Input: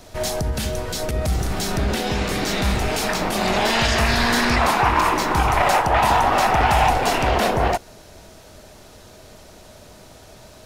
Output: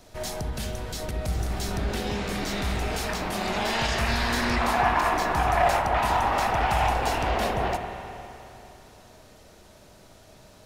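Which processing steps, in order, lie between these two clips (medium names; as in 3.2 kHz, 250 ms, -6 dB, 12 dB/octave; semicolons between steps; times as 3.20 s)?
4.72–5.70 s: small resonant body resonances 700/1700 Hz, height 11 dB; reverberation RT60 3.1 s, pre-delay 39 ms, DRR 5 dB; trim -8 dB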